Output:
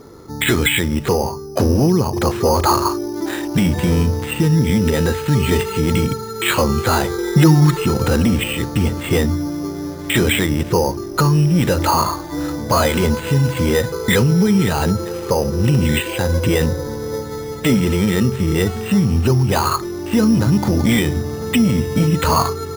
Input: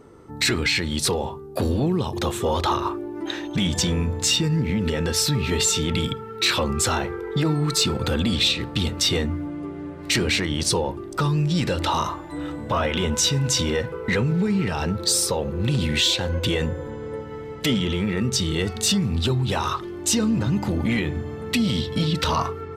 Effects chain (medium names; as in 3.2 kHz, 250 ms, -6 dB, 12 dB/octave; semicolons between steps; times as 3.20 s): 7.18–7.77 s: comb 5.6 ms, depth 97%; careless resampling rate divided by 8×, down filtered, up hold; trim +7.5 dB